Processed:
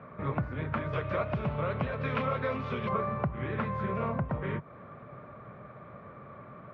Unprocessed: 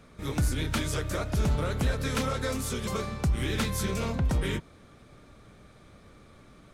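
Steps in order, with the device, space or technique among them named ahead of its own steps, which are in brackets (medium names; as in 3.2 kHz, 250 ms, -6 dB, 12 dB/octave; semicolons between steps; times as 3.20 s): bass amplifier (compression 3:1, threshold -36 dBFS, peak gain reduction 10.5 dB; cabinet simulation 79–2100 Hz, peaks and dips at 80 Hz -7 dB, 140 Hz +4 dB, 300 Hz -6 dB, 600 Hz +7 dB, 1.1 kHz +9 dB); 0.93–2.89 s: high-order bell 3.8 kHz +9.5 dB; trim +5 dB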